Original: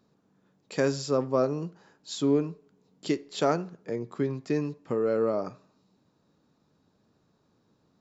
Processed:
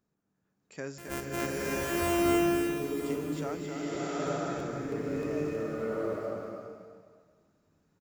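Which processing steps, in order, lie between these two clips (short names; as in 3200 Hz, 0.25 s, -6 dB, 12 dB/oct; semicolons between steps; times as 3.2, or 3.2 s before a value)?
0.98–2.2 sample sorter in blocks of 128 samples; ten-band EQ 125 Hz -6 dB, 250 Hz -6 dB, 500 Hz -7 dB, 1000 Hz -7 dB, 4000 Hz -12 dB; echo 0.267 s -6 dB; crackling interface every 0.32 s, samples 512, repeat, from 0.42; bloom reverb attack 0.91 s, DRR -8 dB; gain -5.5 dB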